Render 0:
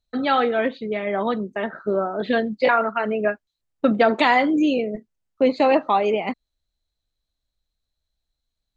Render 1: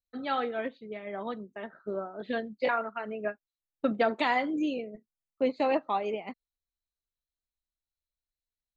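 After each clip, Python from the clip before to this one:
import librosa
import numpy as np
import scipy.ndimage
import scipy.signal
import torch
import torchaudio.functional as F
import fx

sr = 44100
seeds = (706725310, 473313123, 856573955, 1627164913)

y = fx.upward_expand(x, sr, threshold_db=-31.0, expansion=1.5)
y = y * 10.0 ** (-8.5 / 20.0)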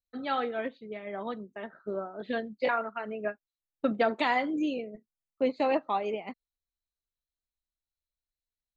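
y = x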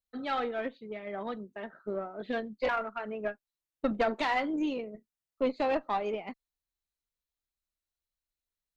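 y = fx.diode_clip(x, sr, knee_db=-22.5)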